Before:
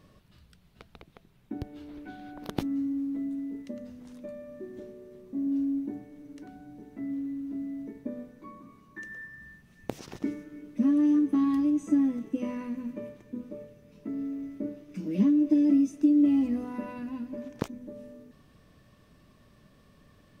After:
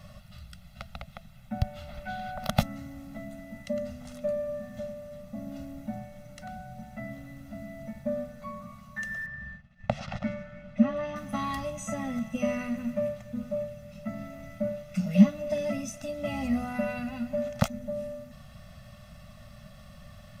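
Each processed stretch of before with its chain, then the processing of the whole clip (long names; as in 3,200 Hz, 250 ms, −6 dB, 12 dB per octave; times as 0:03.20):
0:09.26–0:11.16: low-pass filter 3,100 Hz + downward expander −51 dBFS
whole clip: Chebyshev band-stop filter 230–580 Hz, order 3; comb filter 1.5 ms, depth 75%; level +8.5 dB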